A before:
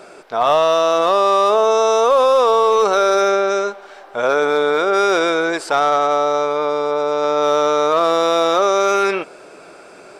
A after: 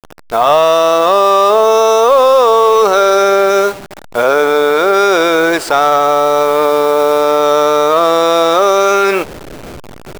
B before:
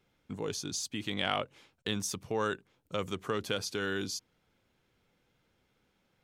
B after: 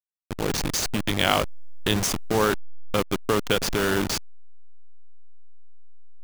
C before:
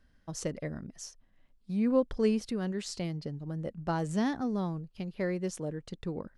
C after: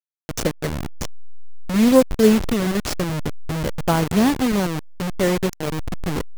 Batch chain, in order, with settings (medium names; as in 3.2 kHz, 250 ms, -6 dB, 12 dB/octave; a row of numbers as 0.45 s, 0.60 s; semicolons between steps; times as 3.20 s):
send-on-delta sampling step -31 dBFS; peak limiter -10.5 dBFS; peak normalisation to -2 dBFS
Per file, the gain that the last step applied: +8.5 dB, +11.0 dB, +13.5 dB